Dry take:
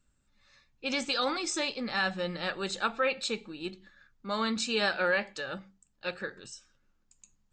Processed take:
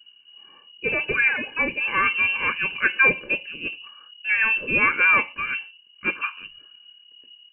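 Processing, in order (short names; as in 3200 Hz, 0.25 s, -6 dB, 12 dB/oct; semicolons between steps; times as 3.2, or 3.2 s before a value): low shelf 380 Hz +8 dB; comb 1.6 ms, depth 66%; inverted band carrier 2900 Hz; gain +6 dB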